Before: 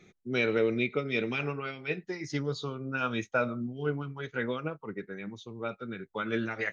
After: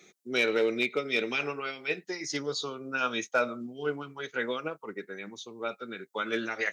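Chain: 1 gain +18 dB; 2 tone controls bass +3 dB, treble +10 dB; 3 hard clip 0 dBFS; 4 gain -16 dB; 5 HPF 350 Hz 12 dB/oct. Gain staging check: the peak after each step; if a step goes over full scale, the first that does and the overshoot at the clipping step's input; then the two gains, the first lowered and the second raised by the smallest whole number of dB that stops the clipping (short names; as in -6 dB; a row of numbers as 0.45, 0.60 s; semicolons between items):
+3.0, +4.0, 0.0, -16.0, -13.0 dBFS; step 1, 4.0 dB; step 1 +14 dB, step 4 -12 dB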